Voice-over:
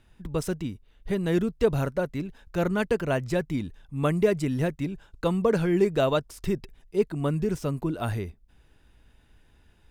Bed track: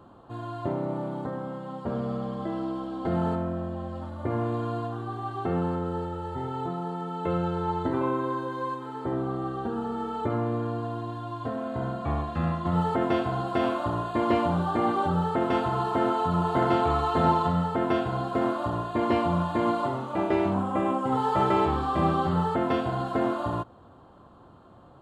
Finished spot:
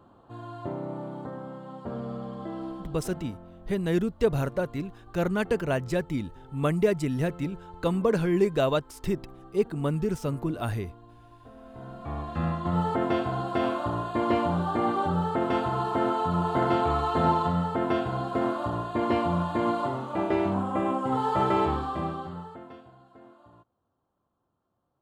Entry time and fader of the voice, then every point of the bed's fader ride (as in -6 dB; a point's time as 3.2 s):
2.60 s, -1.0 dB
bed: 2.68 s -4.5 dB
3.27 s -18 dB
11.52 s -18 dB
12.39 s -1 dB
21.72 s -1 dB
23 s -26 dB